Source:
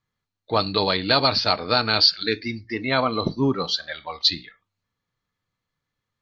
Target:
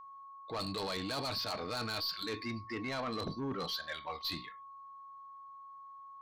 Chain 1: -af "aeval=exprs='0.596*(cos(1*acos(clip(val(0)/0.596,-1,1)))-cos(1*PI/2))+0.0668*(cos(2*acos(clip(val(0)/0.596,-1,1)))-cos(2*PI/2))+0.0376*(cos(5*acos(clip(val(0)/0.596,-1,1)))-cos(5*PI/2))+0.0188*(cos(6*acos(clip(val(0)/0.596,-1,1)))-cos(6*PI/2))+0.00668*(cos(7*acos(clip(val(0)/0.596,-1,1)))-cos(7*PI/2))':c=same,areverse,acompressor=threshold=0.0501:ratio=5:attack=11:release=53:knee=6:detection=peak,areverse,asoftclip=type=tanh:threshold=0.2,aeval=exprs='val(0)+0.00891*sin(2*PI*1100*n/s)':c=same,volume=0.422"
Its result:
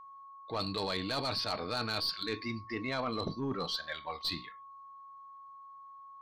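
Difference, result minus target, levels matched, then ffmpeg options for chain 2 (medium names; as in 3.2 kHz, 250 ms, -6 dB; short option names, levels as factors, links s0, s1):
saturation: distortion -13 dB
-af "aeval=exprs='0.596*(cos(1*acos(clip(val(0)/0.596,-1,1)))-cos(1*PI/2))+0.0668*(cos(2*acos(clip(val(0)/0.596,-1,1)))-cos(2*PI/2))+0.0376*(cos(5*acos(clip(val(0)/0.596,-1,1)))-cos(5*PI/2))+0.0188*(cos(6*acos(clip(val(0)/0.596,-1,1)))-cos(6*PI/2))+0.00668*(cos(7*acos(clip(val(0)/0.596,-1,1)))-cos(7*PI/2))':c=same,areverse,acompressor=threshold=0.0501:ratio=5:attack=11:release=53:knee=6:detection=peak,areverse,asoftclip=type=tanh:threshold=0.0631,aeval=exprs='val(0)+0.00891*sin(2*PI*1100*n/s)':c=same,volume=0.422"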